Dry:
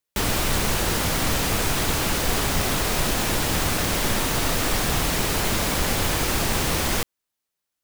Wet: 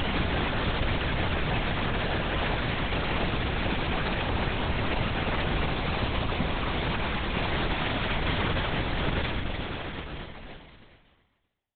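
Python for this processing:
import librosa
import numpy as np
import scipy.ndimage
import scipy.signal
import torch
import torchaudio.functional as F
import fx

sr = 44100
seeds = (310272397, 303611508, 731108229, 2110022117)

p1 = fx.whisperise(x, sr, seeds[0])
p2 = fx.paulstretch(p1, sr, seeds[1], factor=5.9, window_s=0.5, from_s=5.98)
p3 = np.sign(p2) * np.maximum(np.abs(p2) - 10.0 ** (-39.5 / 20.0), 0.0)
p4 = p2 + F.gain(torch.from_numpy(p3), -6.0).numpy()
p5 = fx.stretch_grains(p4, sr, factor=1.5, grain_ms=35.0)
p6 = fx.echo_multitap(p5, sr, ms=(304, 381), db=(-13.5, -16.0))
p7 = fx.lpc_vocoder(p6, sr, seeds[2], excitation='whisper', order=8)
y = F.gain(torch.from_numpy(p7), -5.5).numpy()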